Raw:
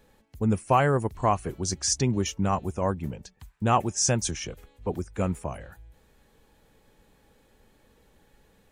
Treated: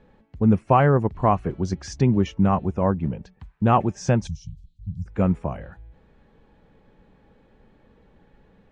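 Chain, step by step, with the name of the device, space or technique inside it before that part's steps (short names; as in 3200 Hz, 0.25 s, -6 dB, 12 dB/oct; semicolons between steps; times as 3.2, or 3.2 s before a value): 4.27–5.06 inverse Chebyshev band-stop 400–1700 Hz, stop band 60 dB; phone in a pocket (LPF 3500 Hz 12 dB/oct; bell 180 Hz +4.5 dB 0.8 oct; high shelf 2400 Hz -8.5 dB); gain +4.5 dB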